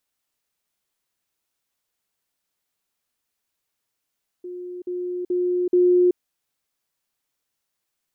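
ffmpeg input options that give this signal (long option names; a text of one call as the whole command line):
ffmpeg -f lavfi -i "aevalsrc='pow(10,(-31+6*floor(t/0.43))/20)*sin(2*PI*358*t)*clip(min(mod(t,0.43),0.38-mod(t,0.43))/0.005,0,1)':duration=1.72:sample_rate=44100" out.wav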